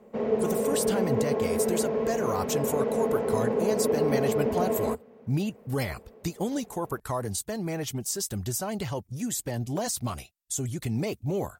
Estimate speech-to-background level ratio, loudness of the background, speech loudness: -4.0 dB, -27.5 LUFS, -31.5 LUFS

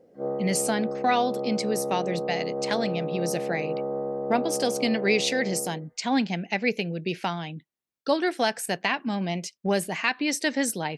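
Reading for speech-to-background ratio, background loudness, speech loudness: 4.0 dB, -31.5 LUFS, -27.5 LUFS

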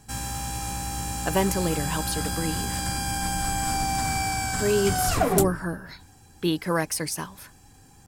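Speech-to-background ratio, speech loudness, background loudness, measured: -1.0 dB, -28.0 LUFS, -27.0 LUFS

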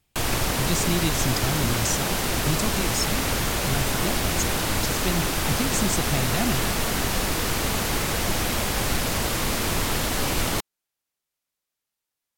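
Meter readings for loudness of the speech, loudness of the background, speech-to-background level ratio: -29.0 LUFS, -24.5 LUFS, -4.5 dB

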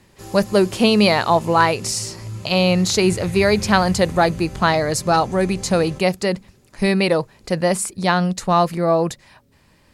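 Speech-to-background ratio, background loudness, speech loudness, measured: 15.5 dB, -34.0 LUFS, -18.5 LUFS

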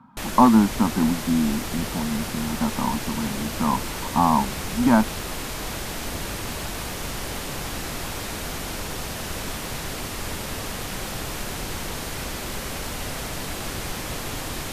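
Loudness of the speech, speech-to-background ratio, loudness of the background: -23.0 LUFS, 7.5 dB, -30.5 LUFS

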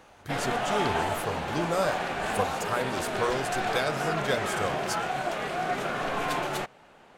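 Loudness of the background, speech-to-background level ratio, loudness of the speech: -30.0 LUFS, -3.0 dB, -33.0 LUFS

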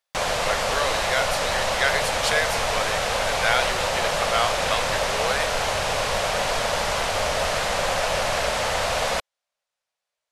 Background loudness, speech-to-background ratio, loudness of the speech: -23.5 LUFS, -4.0 dB, -27.5 LUFS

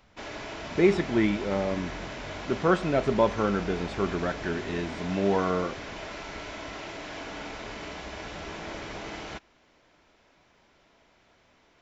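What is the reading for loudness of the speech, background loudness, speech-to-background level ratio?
-27.5 LUFS, -38.0 LUFS, 10.5 dB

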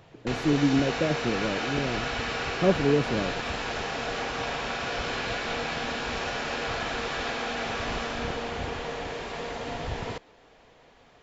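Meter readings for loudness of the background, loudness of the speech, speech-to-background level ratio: -31.0 LUFS, -27.5 LUFS, 3.5 dB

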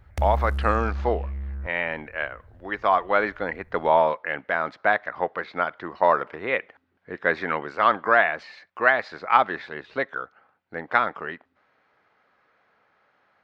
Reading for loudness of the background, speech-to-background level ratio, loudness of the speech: -31.0 LUFS, 6.5 dB, -24.5 LUFS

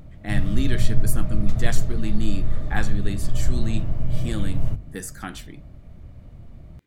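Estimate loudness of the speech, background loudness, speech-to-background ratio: -32.0 LUFS, -28.5 LUFS, -3.5 dB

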